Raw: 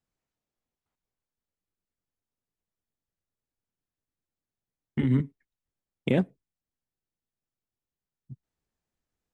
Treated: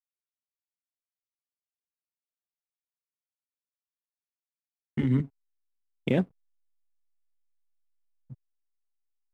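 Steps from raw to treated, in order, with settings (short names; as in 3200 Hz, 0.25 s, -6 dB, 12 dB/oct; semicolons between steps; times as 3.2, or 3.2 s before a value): backlash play -50 dBFS; gain -1 dB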